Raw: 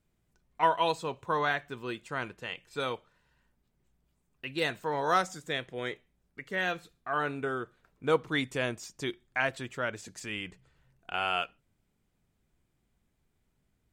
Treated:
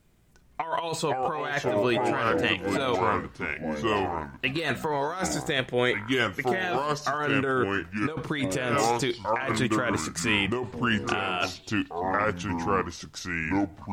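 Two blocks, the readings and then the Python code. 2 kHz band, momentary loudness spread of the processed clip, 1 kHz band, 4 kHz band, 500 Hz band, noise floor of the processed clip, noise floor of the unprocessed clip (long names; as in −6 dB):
+6.0 dB, 6 LU, +5.0 dB, +6.5 dB, +6.5 dB, −53 dBFS, −76 dBFS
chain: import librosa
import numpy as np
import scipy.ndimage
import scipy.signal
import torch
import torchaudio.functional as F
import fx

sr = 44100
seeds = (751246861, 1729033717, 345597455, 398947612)

y = fx.echo_pitch(x, sr, ms=346, semitones=-4, count=3, db_per_echo=-6.0)
y = fx.over_compress(y, sr, threshold_db=-35.0, ratio=-1.0)
y = y * 10.0 ** (9.0 / 20.0)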